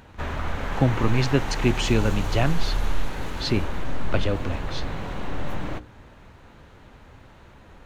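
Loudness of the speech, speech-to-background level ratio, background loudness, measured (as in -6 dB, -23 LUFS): -25.5 LUFS, 6.0 dB, -31.5 LUFS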